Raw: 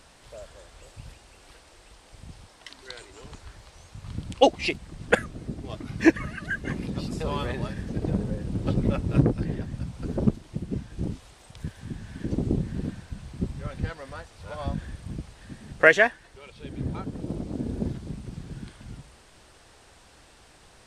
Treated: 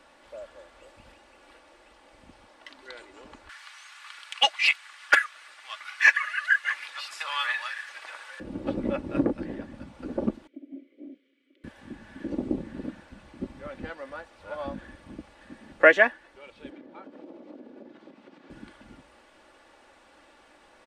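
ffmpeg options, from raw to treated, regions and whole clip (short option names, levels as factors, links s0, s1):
-filter_complex "[0:a]asettb=1/sr,asplit=3[s0][s1][s2];[s0]atrim=end=3.494[s3];[s1]atrim=start=3.49:end=8.4,asetpts=PTS-STARTPTS,afade=t=in:d=0.004:c=qsin,afade=t=out:st=4.906:d=0.004:c=qsin,highpass=f=1300:w=0.5412,highpass=f=1300:w=1.3066,aeval=exprs='0.355*sin(PI/2*2.51*val(0)/0.355)':c=same[s4];[s2]atrim=start=8.396[s5];[s3][s4]acrossfade=d=0.004:c1=hsin:c2=qsin[s6];[s6][s5]acrossfade=d=0.004:c1=qsin:c2=hsin,asettb=1/sr,asplit=3[s7][s8][s9];[s7]atrim=end=10.474[s10];[s8]atrim=start=10.47:end=11.64,asetpts=PTS-STARTPTS,afade=t=in:d=0.004:c=qsin,afade=t=out:st=1.166:d=0.004:c=qsin,aeval=exprs='val(0)*sin(2*PI*470*n/s)':c=same,asplit=3[s11][s12][s13];[s11]bandpass=f=270:t=q:w=8,volume=1[s14];[s12]bandpass=f=2290:t=q:w=8,volume=0.501[s15];[s13]bandpass=f=3010:t=q:w=8,volume=0.355[s16];[s14][s15][s16]amix=inputs=3:normalize=0[s17];[s9]atrim=start=11.636[s18];[s10][s17]acrossfade=d=0.004:c1=hsin:c2=qsin[s19];[s19][s18]acrossfade=d=0.004:c1=qsin:c2=hsin,asettb=1/sr,asplit=3[s20][s21][s22];[s20]atrim=end=16.704[s23];[s21]atrim=start=16.7:end=18.5,asetpts=PTS-STARTPTS,afade=t=in:d=0.004:c=qsin,afade=t=out:st=1.796:d=0.004:c=qsin,acompressor=threshold=0.0178:ratio=6:attack=3.2:release=140:knee=1:detection=peak,highpass=320,lowpass=4800[s24];[s22]atrim=start=18.496[s25];[s23][s24]acrossfade=d=0.004:c1=hsin:c2=qsin[s26];[s26][s25]acrossfade=d=0.004:c1=qsin:c2=hsin,acrossover=split=230 3000:gain=0.158 1 0.251[s27][s28][s29];[s27][s28][s29]amix=inputs=3:normalize=0,aecho=1:1:3.5:0.47"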